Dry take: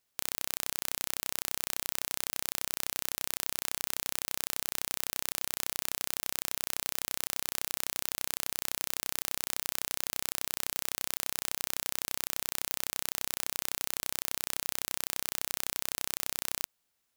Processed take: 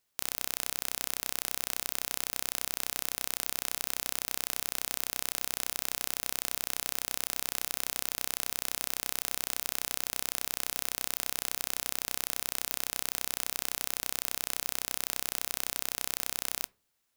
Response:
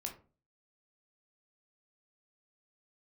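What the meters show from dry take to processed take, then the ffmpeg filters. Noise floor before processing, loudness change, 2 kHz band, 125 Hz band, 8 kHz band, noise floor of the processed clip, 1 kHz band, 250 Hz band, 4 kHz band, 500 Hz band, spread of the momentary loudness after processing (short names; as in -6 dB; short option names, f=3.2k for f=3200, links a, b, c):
-79 dBFS, +1.0 dB, +1.0 dB, +0.5 dB, +1.0 dB, -59 dBFS, +1.0 dB, +1.0 dB, +1.0 dB, +1.0 dB, 0 LU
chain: -filter_complex "[0:a]asplit=2[a][b];[1:a]atrim=start_sample=2205[c];[b][c]afir=irnorm=-1:irlink=0,volume=-15.5dB[d];[a][d]amix=inputs=2:normalize=0"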